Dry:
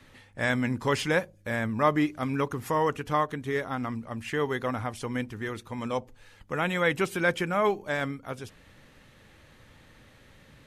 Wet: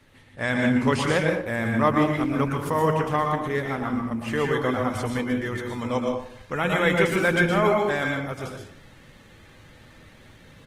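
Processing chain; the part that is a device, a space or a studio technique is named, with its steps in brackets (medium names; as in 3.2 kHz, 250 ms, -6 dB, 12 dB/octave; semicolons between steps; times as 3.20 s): speakerphone in a meeting room (reverberation RT60 0.55 s, pre-delay 110 ms, DRR 1 dB; speakerphone echo 260 ms, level -23 dB; level rider gain up to 3.5 dB; trim -1 dB; Opus 20 kbps 48 kHz)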